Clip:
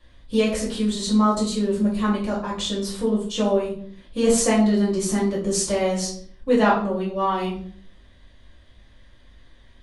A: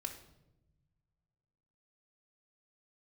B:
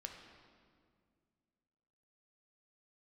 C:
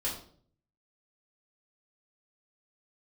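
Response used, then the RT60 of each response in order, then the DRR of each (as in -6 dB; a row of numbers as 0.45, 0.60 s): C; 0.95, 2.1, 0.55 s; 2.5, 2.5, -7.0 dB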